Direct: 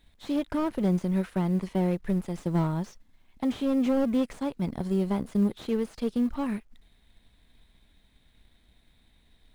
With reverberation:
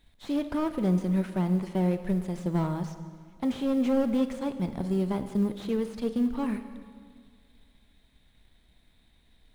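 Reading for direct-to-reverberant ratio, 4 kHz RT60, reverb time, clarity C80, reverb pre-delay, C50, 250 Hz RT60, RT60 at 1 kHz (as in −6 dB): 9.5 dB, 1.7 s, 2.0 s, 11.5 dB, 22 ms, 10.5 dB, 1.9 s, 1.9 s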